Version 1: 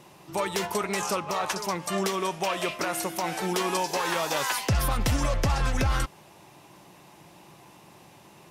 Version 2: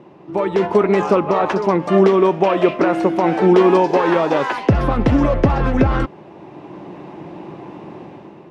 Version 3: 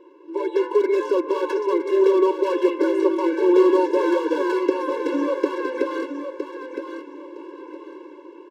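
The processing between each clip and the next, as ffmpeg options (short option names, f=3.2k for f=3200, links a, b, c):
-af "lowpass=2.4k,equalizer=f=320:w=0.63:g=13,dynaudnorm=f=170:g=7:m=10dB"
-filter_complex "[0:a]acrossover=split=170|760[a][b][c];[c]asoftclip=type=hard:threshold=-24dB[d];[a][b][d]amix=inputs=3:normalize=0,aecho=1:1:963|1926|2889:0.398|0.0955|0.0229,afftfilt=real='re*eq(mod(floor(b*sr/1024/290),2),1)':imag='im*eq(mod(floor(b*sr/1024/290),2),1)':win_size=1024:overlap=0.75,volume=-3dB"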